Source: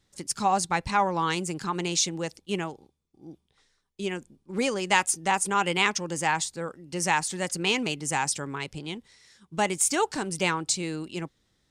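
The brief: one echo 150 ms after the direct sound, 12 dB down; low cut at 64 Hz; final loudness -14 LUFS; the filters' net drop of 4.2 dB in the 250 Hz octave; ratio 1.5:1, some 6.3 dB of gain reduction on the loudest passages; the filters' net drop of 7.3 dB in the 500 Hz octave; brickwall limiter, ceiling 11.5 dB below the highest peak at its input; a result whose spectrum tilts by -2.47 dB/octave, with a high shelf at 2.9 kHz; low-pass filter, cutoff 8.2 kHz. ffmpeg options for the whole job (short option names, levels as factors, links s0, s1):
-af "highpass=64,lowpass=8200,equalizer=f=250:t=o:g=-3.5,equalizer=f=500:t=o:g=-8.5,highshelf=f=2900:g=4,acompressor=threshold=0.0158:ratio=1.5,alimiter=limit=0.0631:level=0:latency=1,aecho=1:1:150:0.251,volume=12.6"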